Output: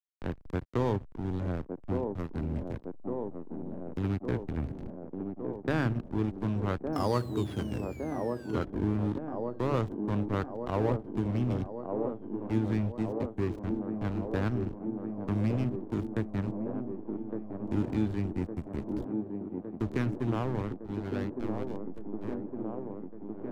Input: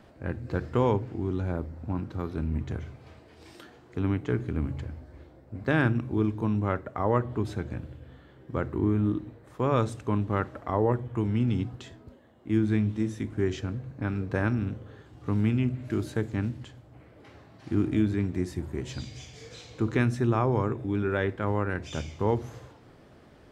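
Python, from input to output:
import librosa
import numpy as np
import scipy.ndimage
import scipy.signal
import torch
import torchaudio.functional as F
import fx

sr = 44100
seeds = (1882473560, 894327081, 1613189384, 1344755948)

y = fx.fade_out_tail(x, sr, length_s=4.2)
y = fx.spec_paint(y, sr, seeds[0], shape='fall', start_s=6.92, length_s=1.73, low_hz=1300.0, high_hz=5500.0, level_db=-33.0)
y = fx.backlash(y, sr, play_db=-24.5)
y = fx.echo_wet_bandpass(y, sr, ms=1160, feedback_pct=70, hz=410.0, wet_db=-4.5)
y = fx.band_squash(y, sr, depth_pct=40)
y = y * librosa.db_to_amplitude(-2.5)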